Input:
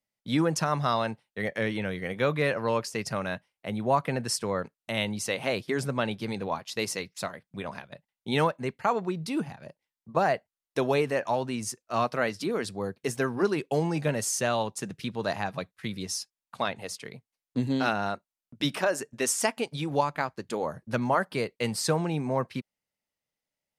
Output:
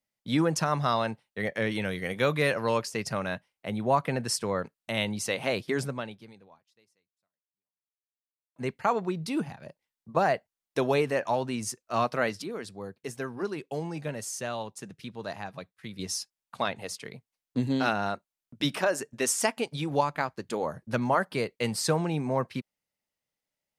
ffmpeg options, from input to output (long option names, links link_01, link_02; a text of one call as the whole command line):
ffmpeg -i in.wav -filter_complex "[0:a]asettb=1/sr,asplit=3[link_01][link_02][link_03];[link_01]atrim=end=1.714[link_04];[link_02]atrim=start=1.71:end=2.82,asetpts=PTS-STARTPTS,afade=type=in:duration=0.004:curve=qsin,afade=type=out:start_time=1.106:duration=0.004:curve=qsin,highshelf=frequency=4100:gain=8.5[link_05];[link_03]atrim=start=2.816[link_06];[link_04][link_05]acrossfade=duration=0.004:curve1=hsin:curve2=qsin[link_07];[link_07][link_06]acrossfade=duration=0.004:curve1=qsin:curve2=hsin,asplit=4[link_08][link_09][link_10][link_11];[link_08]atrim=end=8.56,asetpts=PTS-STARTPTS,afade=type=out:start_time=5.81:duration=2.75:curve=exp[link_12];[link_09]atrim=start=8.56:end=12.422,asetpts=PTS-STARTPTS,afade=type=in:duration=0.004:curve=hsin[link_13];[link_10]atrim=start=12.418:end=15.992,asetpts=PTS-STARTPTS,volume=-7dB[link_14];[link_11]atrim=start=15.988[link_15];[link_12][link_13]concat=n=2:v=0:a=1[link_16];[link_16][link_14]acrossfade=duration=0.004:curve1=hsin:curve2=hsin[link_17];[link_17][link_15]acrossfade=duration=0.004:curve1=hsin:curve2=hsin" out.wav